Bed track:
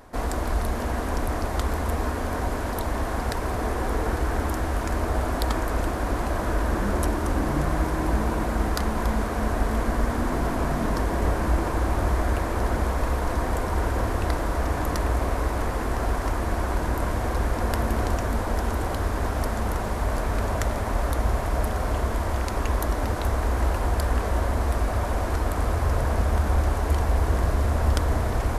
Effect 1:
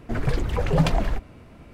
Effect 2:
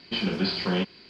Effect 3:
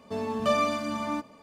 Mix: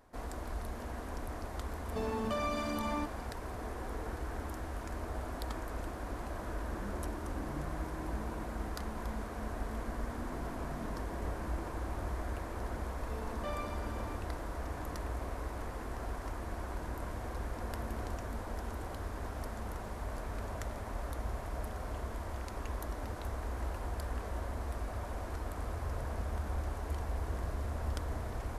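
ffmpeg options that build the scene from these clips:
ffmpeg -i bed.wav -i cue0.wav -i cue1.wav -i cue2.wav -filter_complex "[3:a]asplit=2[link_01][link_02];[0:a]volume=-14.5dB[link_03];[link_01]acompressor=threshold=-31dB:ratio=6:attack=3.2:release=140:knee=1:detection=peak[link_04];[link_02]acrossover=split=5000[link_05][link_06];[link_06]acompressor=threshold=-52dB:ratio=4:attack=1:release=60[link_07];[link_05][link_07]amix=inputs=2:normalize=0[link_08];[link_04]atrim=end=1.42,asetpts=PTS-STARTPTS,volume=-1dB,afade=type=in:duration=0.004:curve=hsin,afade=type=out:start_time=1.416:duration=0.004:curve=hsin,adelay=1850[link_09];[link_08]atrim=end=1.42,asetpts=PTS-STARTPTS,volume=-16.5dB,afade=type=in:duration=0.004:curve=hsin,afade=type=out:start_time=1.416:duration=0.004:curve=hsin,adelay=12980[link_10];[link_03][link_09][link_10]amix=inputs=3:normalize=0" out.wav

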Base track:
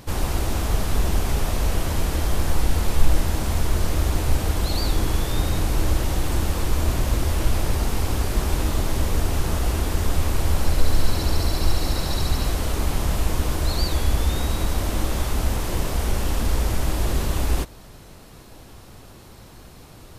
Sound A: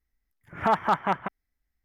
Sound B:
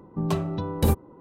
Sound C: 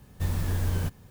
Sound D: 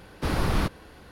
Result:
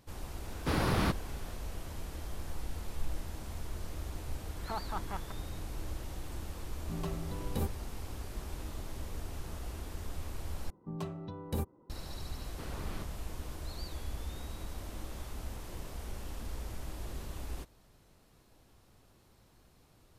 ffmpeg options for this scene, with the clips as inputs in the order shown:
ffmpeg -i bed.wav -i cue0.wav -i cue1.wav -i cue2.wav -i cue3.wav -filter_complex "[4:a]asplit=2[link_01][link_02];[2:a]asplit=2[link_03][link_04];[0:a]volume=-19dB[link_05];[link_01]highpass=68[link_06];[link_02]lowpass=7800[link_07];[link_05]asplit=2[link_08][link_09];[link_08]atrim=end=10.704[link_10];[link_04]atrim=end=1.2,asetpts=PTS-STARTPTS,volume=-13.5dB[link_11];[link_09]atrim=start=11.896[link_12];[link_06]atrim=end=1.11,asetpts=PTS-STARTPTS,volume=-3dB,afade=type=in:duration=0.004:curve=hsin,afade=type=out:start_time=1.106:duration=0.004:curve=hsin,adelay=440[link_13];[1:a]atrim=end=1.84,asetpts=PTS-STARTPTS,volume=-16.5dB,afade=type=in:duration=0.004:curve=hsin,afade=type=out:start_time=1.836:duration=0.004:curve=hsin,adelay=4040[link_14];[link_03]atrim=end=1.2,asetpts=PTS-STARTPTS,volume=-13dB,afade=type=in:duration=0.004:curve=hsin,afade=type=out:start_time=1.196:duration=0.004:curve=hsin,adelay=6730[link_15];[link_07]atrim=end=1.11,asetpts=PTS-STARTPTS,volume=-18dB,afade=type=in:duration=0.004:curve=hsin,afade=type=out:start_time=1.106:duration=0.004:curve=hsin,adelay=545076S[link_16];[link_10][link_11]acrossfade=duration=0.004:curve1=hsin:curve2=hsin[link_17];[link_17][link_12]acrossfade=duration=0.004:curve1=hsin:curve2=hsin[link_18];[link_18][link_13][link_14][link_15][link_16]amix=inputs=5:normalize=0" out.wav

